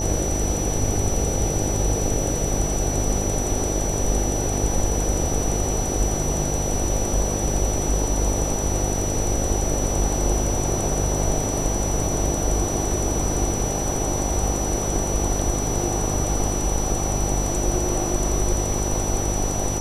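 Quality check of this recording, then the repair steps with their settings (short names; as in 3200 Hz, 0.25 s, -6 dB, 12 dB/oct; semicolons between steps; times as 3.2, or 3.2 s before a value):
buzz 50 Hz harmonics 17 -27 dBFS
tone 5900 Hz -28 dBFS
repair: notch 5900 Hz, Q 30; de-hum 50 Hz, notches 17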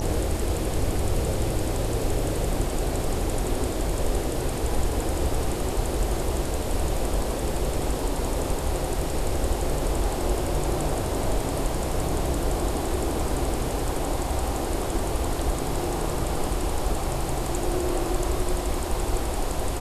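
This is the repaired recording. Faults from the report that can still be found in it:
none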